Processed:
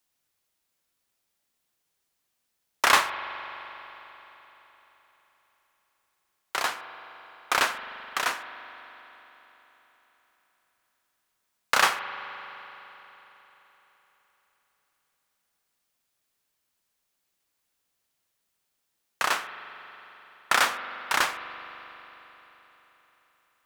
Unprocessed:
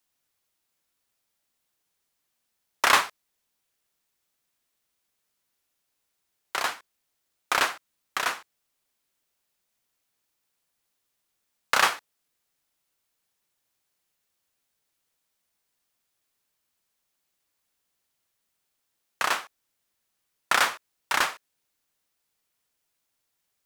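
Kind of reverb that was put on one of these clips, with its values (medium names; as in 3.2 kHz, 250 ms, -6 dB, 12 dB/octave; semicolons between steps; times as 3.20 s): spring tank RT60 4 s, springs 42 ms, chirp 60 ms, DRR 10 dB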